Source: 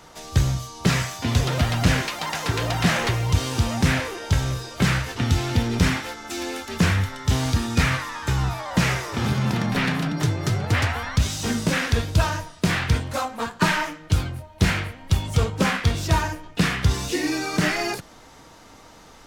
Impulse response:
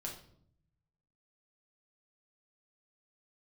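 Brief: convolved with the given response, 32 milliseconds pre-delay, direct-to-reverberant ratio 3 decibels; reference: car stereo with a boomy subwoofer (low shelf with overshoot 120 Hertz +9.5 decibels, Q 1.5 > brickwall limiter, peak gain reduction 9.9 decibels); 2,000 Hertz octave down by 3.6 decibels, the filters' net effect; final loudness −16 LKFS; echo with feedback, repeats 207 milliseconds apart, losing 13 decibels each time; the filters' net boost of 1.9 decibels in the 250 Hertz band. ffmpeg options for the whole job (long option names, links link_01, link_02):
-filter_complex "[0:a]equalizer=frequency=250:width_type=o:gain=5,equalizer=frequency=2000:width_type=o:gain=-4.5,aecho=1:1:207|414|621:0.224|0.0493|0.0108,asplit=2[link_01][link_02];[1:a]atrim=start_sample=2205,adelay=32[link_03];[link_02][link_03]afir=irnorm=-1:irlink=0,volume=-1.5dB[link_04];[link_01][link_04]amix=inputs=2:normalize=0,lowshelf=frequency=120:width_type=q:width=1.5:gain=9.5,volume=1dB,alimiter=limit=-5dB:level=0:latency=1"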